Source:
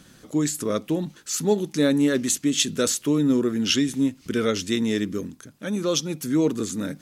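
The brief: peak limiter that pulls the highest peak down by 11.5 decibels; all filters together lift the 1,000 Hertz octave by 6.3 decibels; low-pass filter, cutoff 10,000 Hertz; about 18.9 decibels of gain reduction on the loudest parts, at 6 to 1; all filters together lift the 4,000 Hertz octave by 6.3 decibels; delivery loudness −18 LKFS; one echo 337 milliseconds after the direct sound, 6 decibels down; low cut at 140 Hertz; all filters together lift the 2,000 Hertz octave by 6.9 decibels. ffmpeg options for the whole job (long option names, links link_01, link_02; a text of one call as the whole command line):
ffmpeg -i in.wav -af "highpass=140,lowpass=10000,equalizer=frequency=1000:width_type=o:gain=6,equalizer=frequency=2000:width_type=o:gain=5.5,equalizer=frequency=4000:width_type=o:gain=6,acompressor=threshold=-34dB:ratio=6,alimiter=level_in=7.5dB:limit=-24dB:level=0:latency=1,volume=-7.5dB,aecho=1:1:337:0.501,volume=22dB" out.wav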